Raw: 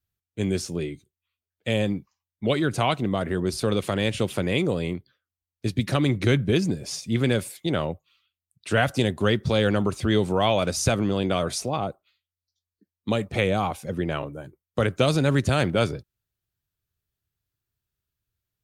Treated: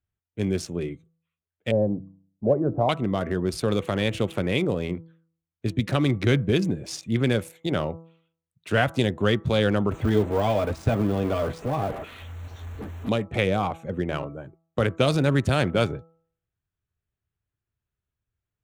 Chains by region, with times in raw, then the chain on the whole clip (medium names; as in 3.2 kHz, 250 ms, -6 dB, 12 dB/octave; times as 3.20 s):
1.71–2.89 s: inverse Chebyshev low-pass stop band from 5 kHz, stop band 80 dB + peaking EQ 590 Hz +6.5 dB 0.45 oct + de-hum 96.28 Hz, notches 3
9.91–13.09 s: jump at every zero crossing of -25 dBFS + de-esser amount 65% + comb of notches 180 Hz
whole clip: local Wiener filter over 9 samples; de-hum 164.2 Hz, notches 8